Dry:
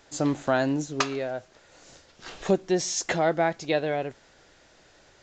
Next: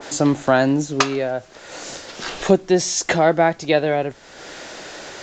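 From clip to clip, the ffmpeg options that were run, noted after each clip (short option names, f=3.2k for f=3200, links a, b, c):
-filter_complex "[0:a]acrossover=split=170[a][b];[b]acompressor=mode=upward:threshold=-30dB:ratio=2.5[c];[a][c]amix=inputs=2:normalize=0,adynamicequalizer=threshold=0.0158:dfrequency=1700:dqfactor=0.7:tfrequency=1700:tqfactor=0.7:attack=5:release=100:ratio=0.375:range=1.5:mode=cutabove:tftype=highshelf,volume=8dB"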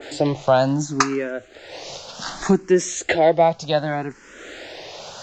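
-filter_complex "[0:a]asplit=2[a][b];[b]afreqshift=0.66[c];[a][c]amix=inputs=2:normalize=1,volume=1.5dB"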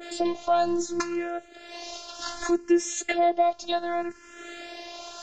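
-af "alimiter=limit=-10.5dB:level=0:latency=1:release=255,afftfilt=real='hypot(re,im)*cos(PI*b)':imag='0':win_size=512:overlap=0.75"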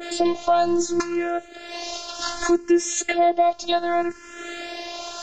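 -af "alimiter=limit=-15.5dB:level=0:latency=1:release=292,volume=7dB"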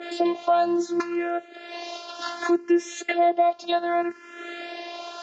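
-af "highpass=230,lowpass=3.6k,volume=-1.5dB"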